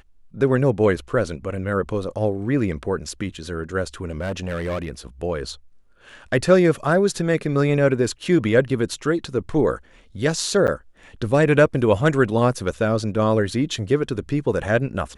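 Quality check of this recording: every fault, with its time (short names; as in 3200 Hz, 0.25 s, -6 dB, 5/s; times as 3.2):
4.1–4.91 clipped -22 dBFS
10.67–10.68 gap 9.1 ms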